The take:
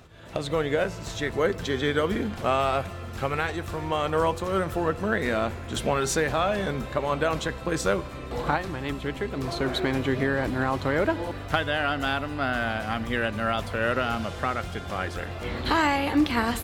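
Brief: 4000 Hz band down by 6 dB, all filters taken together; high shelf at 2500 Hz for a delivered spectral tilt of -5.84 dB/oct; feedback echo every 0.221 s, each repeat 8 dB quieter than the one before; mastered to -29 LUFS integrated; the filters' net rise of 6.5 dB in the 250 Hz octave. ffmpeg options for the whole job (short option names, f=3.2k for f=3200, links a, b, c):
-af "equalizer=f=250:t=o:g=8,highshelf=f=2.5k:g=-3.5,equalizer=f=4k:t=o:g=-5,aecho=1:1:221|442|663|884|1105:0.398|0.159|0.0637|0.0255|0.0102,volume=-5dB"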